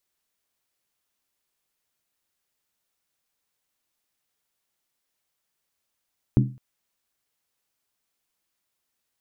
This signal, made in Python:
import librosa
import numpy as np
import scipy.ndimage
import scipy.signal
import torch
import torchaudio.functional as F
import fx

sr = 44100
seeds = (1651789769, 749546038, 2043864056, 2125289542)

y = fx.strike_skin(sr, length_s=0.21, level_db=-12.5, hz=129.0, decay_s=0.36, tilt_db=4.0, modes=5)